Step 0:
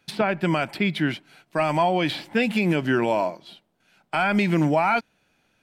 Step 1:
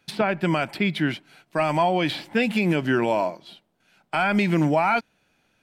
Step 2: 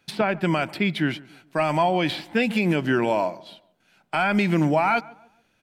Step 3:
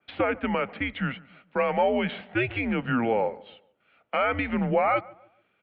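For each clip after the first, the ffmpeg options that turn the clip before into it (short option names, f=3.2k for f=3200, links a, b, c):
-af anull
-filter_complex "[0:a]asplit=2[a][b];[b]adelay=143,lowpass=f=1.4k:p=1,volume=-20.5dB,asplit=2[c][d];[d]adelay=143,lowpass=f=1.4k:p=1,volume=0.39,asplit=2[e][f];[f]adelay=143,lowpass=f=1.4k:p=1,volume=0.39[g];[a][c][e][g]amix=inputs=4:normalize=0"
-af "highpass=f=300:t=q:w=0.5412,highpass=f=300:t=q:w=1.307,lowpass=f=3.3k:t=q:w=0.5176,lowpass=f=3.3k:t=q:w=0.7071,lowpass=f=3.3k:t=q:w=1.932,afreqshift=-120,adynamicequalizer=threshold=0.0126:dfrequency=2200:dqfactor=0.7:tfrequency=2200:tqfactor=0.7:attack=5:release=100:ratio=0.375:range=3:mode=cutabove:tftype=highshelf,volume=-1.5dB"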